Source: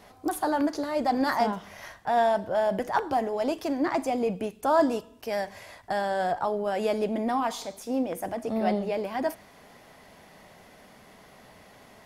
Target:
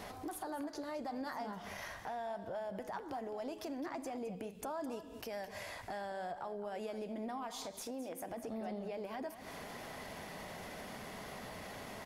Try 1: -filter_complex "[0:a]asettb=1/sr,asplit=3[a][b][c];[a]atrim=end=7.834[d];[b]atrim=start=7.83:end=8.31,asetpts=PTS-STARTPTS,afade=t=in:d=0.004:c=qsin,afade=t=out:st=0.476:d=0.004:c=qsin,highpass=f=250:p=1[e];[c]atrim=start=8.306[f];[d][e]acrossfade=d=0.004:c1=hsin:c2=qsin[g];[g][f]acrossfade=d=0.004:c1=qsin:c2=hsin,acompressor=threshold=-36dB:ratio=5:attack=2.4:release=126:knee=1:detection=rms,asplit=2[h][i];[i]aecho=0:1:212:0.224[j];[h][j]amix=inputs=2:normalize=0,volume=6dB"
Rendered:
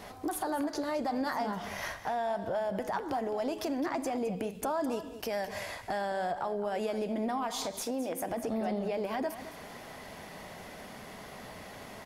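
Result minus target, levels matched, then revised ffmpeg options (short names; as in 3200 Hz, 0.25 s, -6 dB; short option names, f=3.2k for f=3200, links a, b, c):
compressor: peak gain reduction -9 dB
-filter_complex "[0:a]asettb=1/sr,asplit=3[a][b][c];[a]atrim=end=7.834[d];[b]atrim=start=7.83:end=8.31,asetpts=PTS-STARTPTS,afade=t=in:d=0.004:c=qsin,afade=t=out:st=0.476:d=0.004:c=qsin,highpass=f=250:p=1[e];[c]atrim=start=8.306[f];[d][e]acrossfade=d=0.004:c1=hsin:c2=qsin[g];[g][f]acrossfade=d=0.004:c1=qsin:c2=hsin,acompressor=threshold=-47.5dB:ratio=5:attack=2.4:release=126:knee=1:detection=rms,asplit=2[h][i];[i]aecho=0:1:212:0.224[j];[h][j]amix=inputs=2:normalize=0,volume=6dB"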